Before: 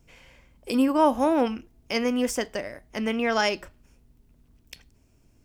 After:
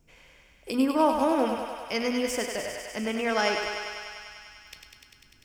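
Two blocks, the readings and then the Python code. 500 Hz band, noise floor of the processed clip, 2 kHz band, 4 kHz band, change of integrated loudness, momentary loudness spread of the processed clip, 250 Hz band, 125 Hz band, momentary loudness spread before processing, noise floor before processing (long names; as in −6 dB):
−1.5 dB, −59 dBFS, 0.0 dB, 0.0 dB, −2.5 dB, 21 LU, −3.0 dB, −3.0 dB, 14 LU, −62 dBFS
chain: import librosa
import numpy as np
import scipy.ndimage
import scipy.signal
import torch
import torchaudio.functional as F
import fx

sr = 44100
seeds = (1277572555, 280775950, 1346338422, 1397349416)

y = fx.hum_notches(x, sr, base_hz=60, count=4)
y = fx.comb_fb(y, sr, f0_hz=52.0, decay_s=1.7, harmonics='all', damping=0.0, mix_pct=50)
y = fx.echo_thinned(y, sr, ms=99, feedback_pct=83, hz=410.0, wet_db=-5)
y = y * librosa.db_to_amplitude(2.5)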